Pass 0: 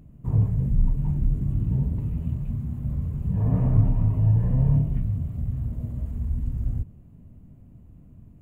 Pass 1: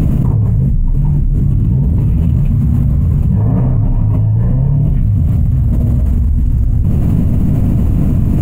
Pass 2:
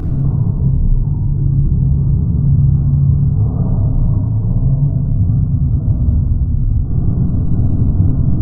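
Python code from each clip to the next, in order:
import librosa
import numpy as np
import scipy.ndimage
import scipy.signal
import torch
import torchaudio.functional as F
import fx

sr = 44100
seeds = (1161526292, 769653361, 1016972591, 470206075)

y1 = fx.env_flatten(x, sr, amount_pct=100)
y1 = F.gain(torch.from_numpy(y1), 2.5).numpy()
y2 = fx.brickwall_lowpass(y1, sr, high_hz=1500.0)
y2 = fx.echo_feedback(y2, sr, ms=195, feedback_pct=55, wet_db=-13)
y2 = fx.room_shoebox(y2, sr, seeds[0], volume_m3=3300.0, walls='mixed', distance_m=3.6)
y2 = F.gain(torch.from_numpy(y2), -11.0).numpy()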